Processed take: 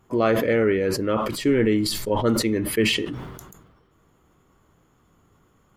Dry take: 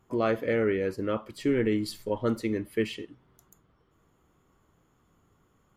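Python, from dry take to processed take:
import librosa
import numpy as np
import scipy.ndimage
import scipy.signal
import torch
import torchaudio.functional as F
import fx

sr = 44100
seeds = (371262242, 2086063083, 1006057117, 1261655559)

y = fx.sustainer(x, sr, db_per_s=42.0)
y = F.gain(torch.from_numpy(y), 5.5).numpy()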